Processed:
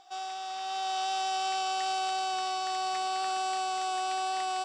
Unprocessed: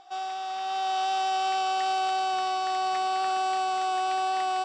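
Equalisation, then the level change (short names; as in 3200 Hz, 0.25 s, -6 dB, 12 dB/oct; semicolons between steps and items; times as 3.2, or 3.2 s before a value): high shelf 4700 Hz +11.5 dB; -5.0 dB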